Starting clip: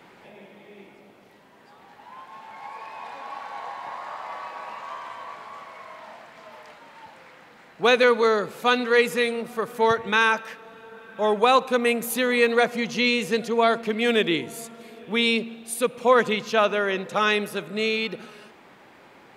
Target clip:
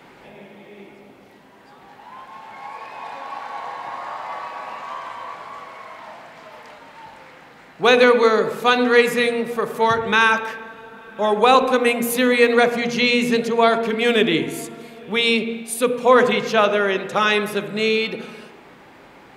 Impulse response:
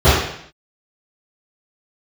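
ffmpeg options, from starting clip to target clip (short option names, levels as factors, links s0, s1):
-filter_complex "[0:a]asplit=2[s0][s1];[1:a]atrim=start_sample=2205,asetrate=28665,aresample=44100[s2];[s1][s2]afir=irnorm=-1:irlink=0,volume=0.0112[s3];[s0][s3]amix=inputs=2:normalize=0,volume=1.58"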